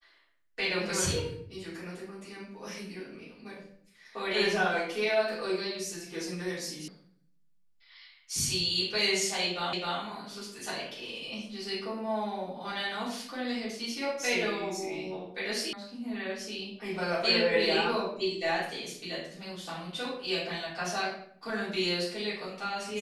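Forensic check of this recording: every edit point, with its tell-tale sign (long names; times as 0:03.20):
0:06.88: cut off before it has died away
0:09.73: the same again, the last 0.26 s
0:15.73: cut off before it has died away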